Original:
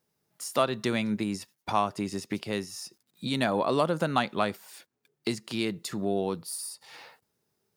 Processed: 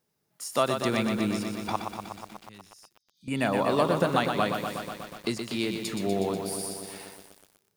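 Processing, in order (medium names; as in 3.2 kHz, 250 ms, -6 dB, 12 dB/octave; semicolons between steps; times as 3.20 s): 1.76–3.28 s: amplifier tone stack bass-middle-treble 6-0-2; 2.98–3.42 s: spectral replace 3–6.6 kHz both; bit-crushed delay 122 ms, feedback 80%, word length 8-bit, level -6 dB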